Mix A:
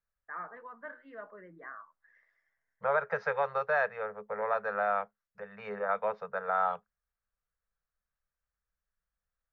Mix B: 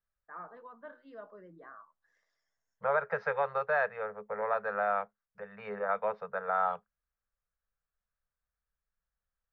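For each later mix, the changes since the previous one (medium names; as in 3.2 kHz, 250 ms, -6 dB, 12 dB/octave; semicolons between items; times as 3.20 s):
first voice: remove resonant low-pass 2 kHz, resonance Q 3.7; master: add distance through air 110 m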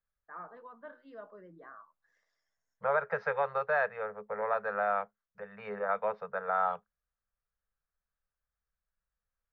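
no change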